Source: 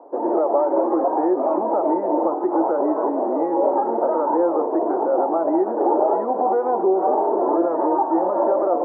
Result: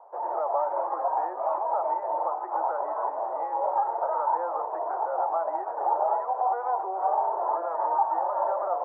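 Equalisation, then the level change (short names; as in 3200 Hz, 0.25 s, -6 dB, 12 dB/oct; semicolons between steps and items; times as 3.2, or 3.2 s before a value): HPF 750 Hz 24 dB/oct; air absorption 320 m; 0.0 dB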